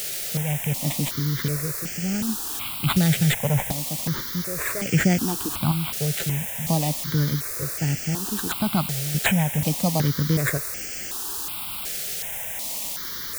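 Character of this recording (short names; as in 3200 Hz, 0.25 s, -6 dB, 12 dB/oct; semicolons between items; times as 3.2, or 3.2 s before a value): aliases and images of a low sample rate 5500 Hz, jitter 0%; random-step tremolo, depth 70%; a quantiser's noise floor 6-bit, dither triangular; notches that jump at a steady rate 2.7 Hz 270–3800 Hz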